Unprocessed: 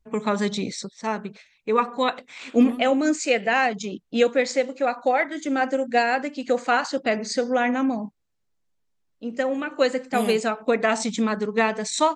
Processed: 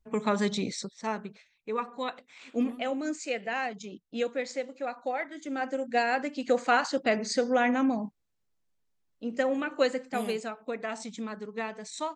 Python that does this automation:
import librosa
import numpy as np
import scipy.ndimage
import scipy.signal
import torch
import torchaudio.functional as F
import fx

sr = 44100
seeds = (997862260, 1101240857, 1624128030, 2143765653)

y = fx.gain(x, sr, db=fx.line((0.85, -3.5), (1.78, -11.0), (5.38, -11.0), (6.38, -3.0), (9.67, -3.0), (10.62, -13.5)))